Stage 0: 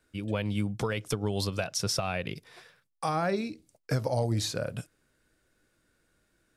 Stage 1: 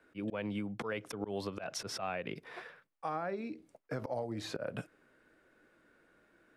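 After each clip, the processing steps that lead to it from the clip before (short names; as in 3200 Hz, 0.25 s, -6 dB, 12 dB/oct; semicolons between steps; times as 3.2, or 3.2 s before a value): three-band isolator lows -15 dB, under 200 Hz, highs -17 dB, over 2600 Hz; auto swell 0.148 s; compressor 16:1, threshold -41 dBFS, peak gain reduction 16.5 dB; gain +7.5 dB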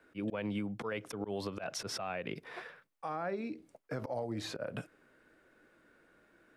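limiter -29 dBFS, peak gain reduction 6 dB; gain +1.5 dB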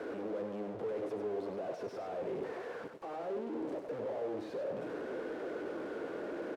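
infinite clipping; band-pass 450 Hz, Q 1.9; echo 98 ms -7 dB; gain +7 dB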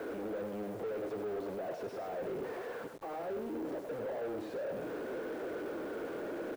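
level-crossing sampler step -56.5 dBFS; soft clip -35.5 dBFS, distortion -16 dB; gain +2.5 dB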